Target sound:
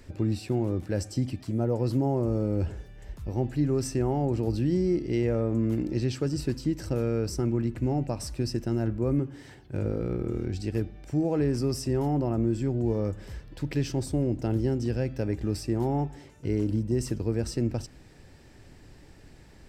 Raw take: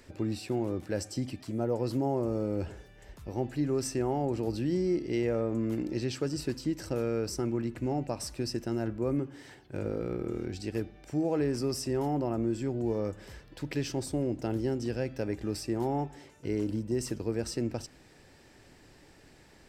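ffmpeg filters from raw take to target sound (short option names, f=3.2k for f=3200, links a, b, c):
-af "lowshelf=f=180:g=11.5"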